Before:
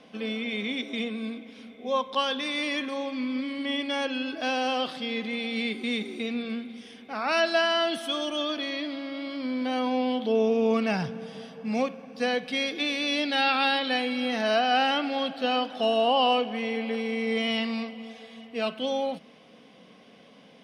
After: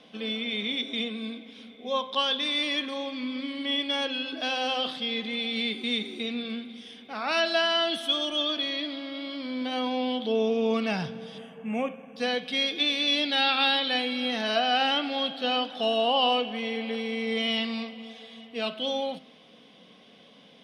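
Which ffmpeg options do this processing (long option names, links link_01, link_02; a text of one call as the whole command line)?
ffmpeg -i in.wav -filter_complex "[0:a]asettb=1/sr,asplit=3[link_01][link_02][link_03];[link_01]atrim=end=11.384[link_04];[link_02]atrim=start=11.38:end=12.16,asetpts=PTS-STARTPTS,afade=type=in:duration=0.004:curve=qsin,afade=type=out:start_time=0.776:duration=0.004:curve=qsin,asuperstop=centerf=4500:order=8:qfactor=1.3[link_05];[link_03]atrim=start=12.156[link_06];[link_04][link_05]acrossfade=duration=0.004:curve1=hsin:curve2=qsin[link_07];[link_07][link_06]acrossfade=duration=0.004:curve1=qsin:curve2=hsin,equalizer=frequency=3500:width_type=o:width=0.51:gain=8.5,bandreject=frequency=129.8:width_type=h:width=4,bandreject=frequency=259.6:width_type=h:width=4,bandreject=frequency=389.4:width_type=h:width=4,bandreject=frequency=519.2:width_type=h:width=4,bandreject=frequency=649:width_type=h:width=4,bandreject=frequency=778.8:width_type=h:width=4,bandreject=frequency=908.6:width_type=h:width=4,bandreject=frequency=1038.4:width_type=h:width=4,bandreject=frequency=1168.2:width_type=h:width=4,bandreject=frequency=1298:width_type=h:width=4,bandreject=frequency=1427.8:width_type=h:width=4,bandreject=frequency=1557.6:width_type=h:width=4,bandreject=frequency=1687.4:width_type=h:width=4,bandreject=frequency=1817.2:width_type=h:width=4,bandreject=frequency=1947:width_type=h:width=4,bandreject=frequency=2076.8:width_type=h:width=4,bandreject=frequency=2206.6:width_type=h:width=4,bandreject=frequency=2336.4:width_type=h:width=4,bandreject=frequency=2466.2:width_type=h:width=4,bandreject=frequency=2596:width_type=h:width=4,bandreject=frequency=2725.8:width_type=h:width=4,bandreject=frequency=2855.6:width_type=h:width=4,bandreject=frequency=2985.4:width_type=h:width=4,bandreject=frequency=3115.2:width_type=h:width=4,bandreject=frequency=3245:width_type=h:width=4,bandreject=frequency=3374.8:width_type=h:width=4,bandreject=frequency=3504.6:width_type=h:width=4,bandreject=frequency=3634.4:width_type=h:width=4,bandreject=frequency=3764.2:width_type=h:width=4,bandreject=frequency=3894:width_type=h:width=4,bandreject=frequency=4023.8:width_type=h:width=4,bandreject=frequency=4153.6:width_type=h:width=4,bandreject=frequency=4283.4:width_type=h:width=4,bandreject=frequency=4413.2:width_type=h:width=4,bandreject=frequency=4543:width_type=h:width=4,bandreject=frequency=4672.8:width_type=h:width=4,bandreject=frequency=4802.6:width_type=h:width=4,bandreject=frequency=4932.4:width_type=h:width=4,bandreject=frequency=5062.2:width_type=h:width=4,volume=-2dB" out.wav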